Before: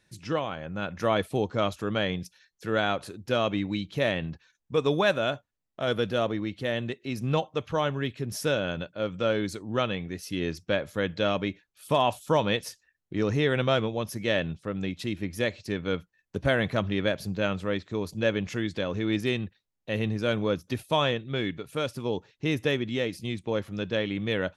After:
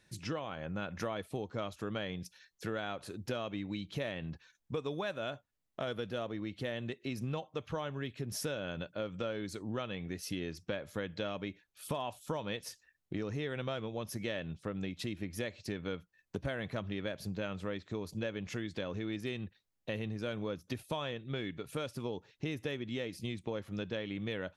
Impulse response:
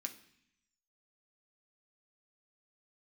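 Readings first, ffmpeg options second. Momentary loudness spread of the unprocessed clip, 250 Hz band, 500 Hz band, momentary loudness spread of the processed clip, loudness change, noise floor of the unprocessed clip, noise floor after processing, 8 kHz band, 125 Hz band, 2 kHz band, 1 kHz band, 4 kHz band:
8 LU, -9.5 dB, -11.5 dB, 4 LU, -10.5 dB, -80 dBFS, -80 dBFS, -5.0 dB, -9.0 dB, -11.5 dB, -12.5 dB, -11.0 dB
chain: -af "acompressor=threshold=0.0178:ratio=6"

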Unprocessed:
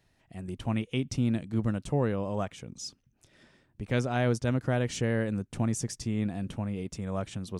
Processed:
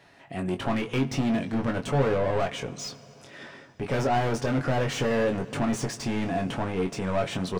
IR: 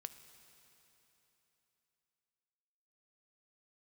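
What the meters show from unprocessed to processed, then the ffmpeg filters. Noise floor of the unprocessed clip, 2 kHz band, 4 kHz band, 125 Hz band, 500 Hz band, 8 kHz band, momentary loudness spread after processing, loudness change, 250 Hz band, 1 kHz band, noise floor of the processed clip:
-70 dBFS, +5.5 dB, +6.0 dB, 0.0 dB, +6.0 dB, +1.5 dB, 13 LU, +3.5 dB, +2.5 dB, +9.0 dB, -52 dBFS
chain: -filter_complex "[0:a]asplit=2[s0][s1];[s1]highpass=f=720:p=1,volume=39.8,asoftclip=type=tanh:threshold=0.237[s2];[s0][s2]amix=inputs=2:normalize=0,lowpass=f=1500:p=1,volume=0.501,aecho=1:1:7.2:0.31,asplit=2[s3][s4];[1:a]atrim=start_sample=2205,adelay=22[s5];[s4][s5]afir=irnorm=-1:irlink=0,volume=0.944[s6];[s3][s6]amix=inputs=2:normalize=0,volume=0.531"

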